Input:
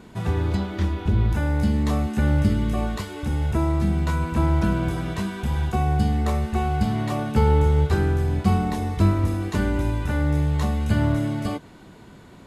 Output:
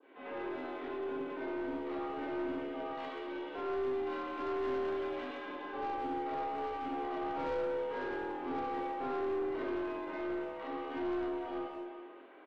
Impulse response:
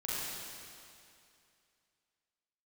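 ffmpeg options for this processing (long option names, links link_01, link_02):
-filter_complex "[0:a]asettb=1/sr,asplit=3[link_01][link_02][link_03];[link_01]atrim=end=2.894[link_04];[link_02]atrim=start=2.89:end=5.38,asetpts=PTS-STARTPTS,afade=type=in:duration=0.004:curve=qsin,afade=type=out:start_time=2.486:duration=0.004:curve=qsin,aemphasis=mode=production:type=75fm[link_05];[link_03]atrim=start=5.376[link_06];[link_04][link_05]acrossfade=duration=0.004:curve1=hsin:curve2=qsin[link_07];[link_07][link_06]acrossfade=duration=0.004:curve1=qsin:curve2=hsin[link_08];[1:a]atrim=start_sample=2205,asetrate=66150,aresample=44100[link_09];[link_08][link_09]afir=irnorm=-1:irlink=0,highpass=frequency=270:width_type=q:width=0.5412,highpass=frequency=270:width_type=q:width=1.307,lowpass=frequency=3000:width_type=q:width=0.5176,lowpass=frequency=3000:width_type=q:width=0.7071,lowpass=frequency=3000:width_type=q:width=1.932,afreqshift=62,aeval=exprs='(tanh(15.8*val(0)+0.2)-tanh(0.2))/15.8':channel_layout=same,adynamicequalizer=threshold=0.00282:dfrequency=2300:dqfactor=1.6:tfrequency=2300:tqfactor=1.6:attack=5:release=100:ratio=0.375:range=2:mode=cutabove:tftype=bell,asplit=2[link_10][link_11];[link_11]adelay=180,highpass=300,lowpass=3400,asoftclip=type=hard:threshold=-30dB,volume=-11dB[link_12];[link_10][link_12]amix=inputs=2:normalize=0,volume=-7.5dB"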